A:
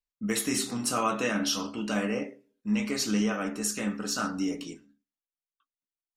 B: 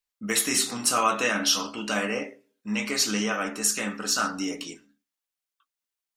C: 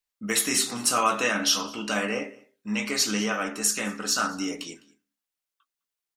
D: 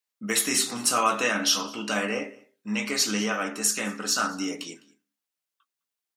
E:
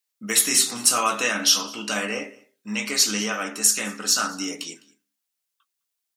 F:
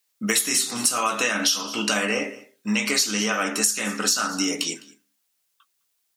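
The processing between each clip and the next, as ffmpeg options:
ffmpeg -i in.wav -af "lowshelf=frequency=430:gain=-12,volume=7dB" out.wav
ffmpeg -i in.wav -af "aecho=1:1:206:0.0631" out.wav
ffmpeg -i in.wav -af "highpass=110" out.wav
ffmpeg -i in.wav -af "highshelf=frequency=2800:gain=8,volume=-1dB" out.wav
ffmpeg -i in.wav -af "acompressor=threshold=-28dB:ratio=6,volume=8.5dB" out.wav

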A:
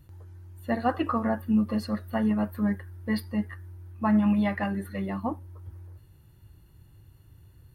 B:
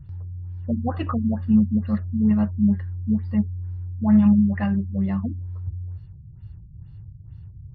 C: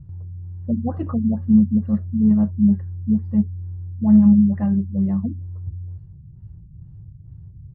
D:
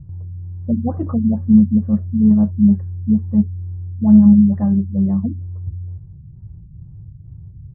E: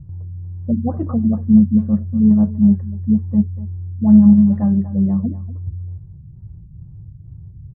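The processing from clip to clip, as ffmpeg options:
ffmpeg -i in.wav -af "lowshelf=frequency=220:width_type=q:width=1.5:gain=11,afftfilt=real='re*lt(b*sr/1024,290*pow(6000/290,0.5+0.5*sin(2*PI*2.2*pts/sr)))':imag='im*lt(b*sr/1024,290*pow(6000/290,0.5+0.5*sin(2*PI*2.2*pts/sr)))':win_size=1024:overlap=0.75" out.wav
ffmpeg -i in.wav -af "firequalizer=gain_entry='entry(110,0);entry(160,4);entry(1200,-8);entry(2600,-18)':delay=0.05:min_phase=1" out.wav
ffmpeg -i in.wav -af "lowpass=1100,volume=3.5dB" out.wav
ffmpeg -i in.wav -filter_complex "[0:a]asplit=2[link_01][link_02];[link_02]adelay=240,highpass=300,lowpass=3400,asoftclip=type=hard:threshold=-11.5dB,volume=-13dB[link_03];[link_01][link_03]amix=inputs=2:normalize=0" out.wav

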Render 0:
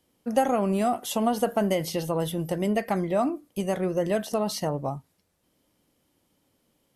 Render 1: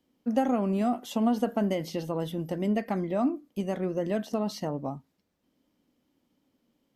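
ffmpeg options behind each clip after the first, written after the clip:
ffmpeg -i in.wav -af "equalizer=frequency=100:width_type=o:width=0.67:gain=-4,equalizer=frequency=250:width_type=o:width=0.67:gain=9,equalizer=frequency=10000:width_type=o:width=0.67:gain=-12,volume=-5.5dB" out.wav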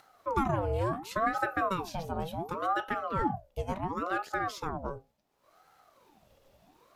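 ffmpeg -i in.wav -af "bandreject=frequency=60:width_type=h:width=6,bandreject=frequency=120:width_type=h:width=6,bandreject=frequency=180:width_type=h:width=6,bandreject=frequency=240:width_type=h:width=6,bandreject=frequency=300:width_type=h:width=6,bandreject=frequency=360:width_type=h:width=6,bandreject=frequency=420:width_type=h:width=6,bandreject=frequency=480:width_type=h:width=6,bandreject=frequency=540:width_type=h:width=6,acompressor=mode=upward:threshold=-46dB:ratio=2.5,aeval=exprs='val(0)*sin(2*PI*660*n/s+660*0.6/0.7*sin(2*PI*0.7*n/s))':channel_layout=same" out.wav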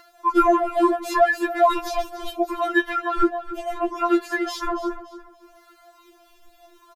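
ffmpeg -i in.wav -filter_complex "[0:a]asplit=2[link_01][link_02];[link_02]asoftclip=type=hard:threshold=-23dB,volume=-6dB[link_03];[link_01][link_03]amix=inputs=2:normalize=0,aecho=1:1:285|570|855:0.188|0.0603|0.0193,afftfilt=real='re*4*eq(mod(b,16),0)':imag='im*4*eq(mod(b,16),0)':win_size=2048:overlap=0.75,volume=9dB" out.wav

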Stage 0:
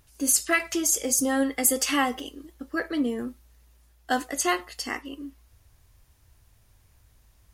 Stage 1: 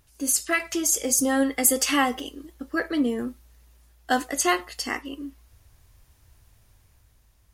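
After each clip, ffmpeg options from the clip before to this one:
ffmpeg -i in.wav -af "dynaudnorm=framelen=180:gausssize=9:maxgain=4dB,volume=-1.5dB" out.wav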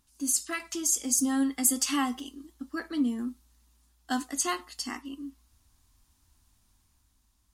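ffmpeg -i in.wav -af "equalizer=frequency=125:width_type=o:width=1:gain=-7,equalizer=frequency=250:width_type=o:width=1:gain=11,equalizer=frequency=500:width_type=o:width=1:gain=-12,equalizer=frequency=1000:width_type=o:width=1:gain=6,equalizer=frequency=2000:width_type=o:width=1:gain=-4,equalizer=frequency=4000:width_type=o:width=1:gain=4,equalizer=frequency=8000:width_type=o:width=1:gain=6,volume=-9dB" out.wav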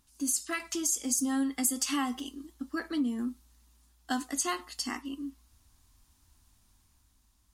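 ffmpeg -i in.wav -af "acompressor=threshold=-31dB:ratio=2,volume=1.5dB" out.wav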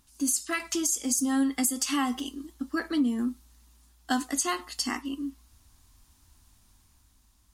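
ffmpeg -i in.wav -af "alimiter=limit=-19dB:level=0:latency=1:release=294,volume=4.5dB" out.wav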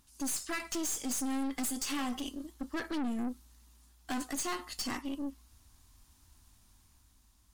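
ffmpeg -i in.wav -af "aeval=exprs='(tanh(39.8*val(0)+0.5)-tanh(0.5))/39.8':channel_layout=same" out.wav

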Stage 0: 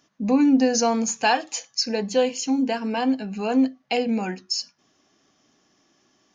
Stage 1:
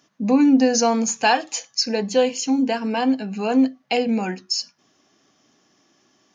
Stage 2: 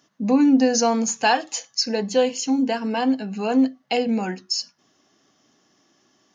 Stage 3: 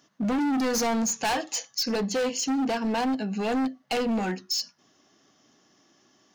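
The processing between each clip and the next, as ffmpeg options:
ffmpeg -i in.wav -af "highpass=83,volume=2.5dB" out.wav
ffmpeg -i in.wav -af "bandreject=frequency=2400:width=14,volume=-1dB" out.wav
ffmpeg -i in.wav -af "asoftclip=type=hard:threshold=-23.5dB" out.wav

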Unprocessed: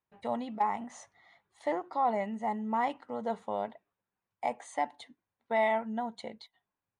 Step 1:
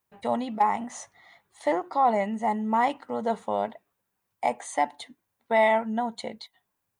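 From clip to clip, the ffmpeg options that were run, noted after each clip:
ffmpeg -i in.wav -af "highshelf=frequency=8300:gain=10.5,volume=6.5dB" out.wav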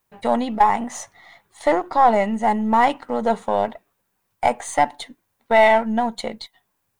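ffmpeg -i in.wav -af "aeval=exprs='if(lt(val(0),0),0.708*val(0),val(0))':channel_layout=same,volume=8.5dB" out.wav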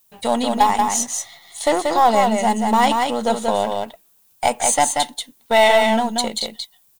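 ffmpeg -i in.wav -af "aexciter=amount=2.9:drive=7.5:freq=2800,aecho=1:1:184:0.631" out.wav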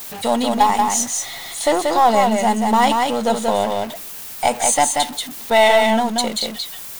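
ffmpeg -i in.wav -af "aeval=exprs='val(0)+0.5*0.0422*sgn(val(0))':channel_layout=same" out.wav

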